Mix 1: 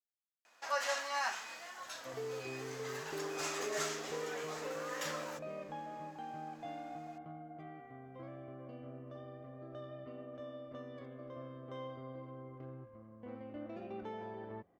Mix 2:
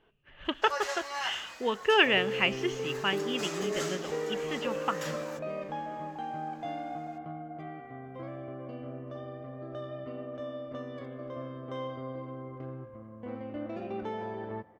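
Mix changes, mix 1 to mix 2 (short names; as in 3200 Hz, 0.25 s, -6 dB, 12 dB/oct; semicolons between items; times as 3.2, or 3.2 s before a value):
speech: unmuted; second sound +6.0 dB; reverb: on, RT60 1.7 s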